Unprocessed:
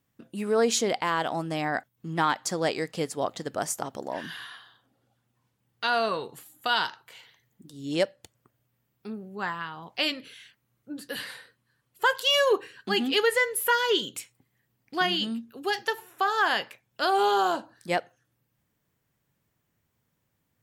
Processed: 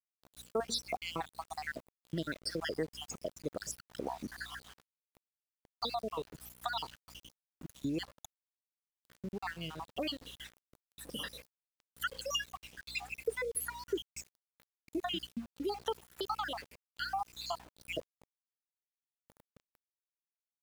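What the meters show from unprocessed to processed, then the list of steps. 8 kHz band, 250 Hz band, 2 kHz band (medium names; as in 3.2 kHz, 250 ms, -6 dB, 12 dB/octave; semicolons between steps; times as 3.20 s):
-9.5 dB, -9.0 dB, -14.0 dB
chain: random holes in the spectrogram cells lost 72%; peaking EQ 1.9 kHz -4 dB 0.73 oct; compression 2.5:1, threshold -46 dBFS, peak gain reduction 16.5 dB; hum 60 Hz, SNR 16 dB; rotary cabinet horn 6.3 Hz, later 0.7 Hz, at 12.80 s; small samples zeroed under -58.5 dBFS; trim +9 dB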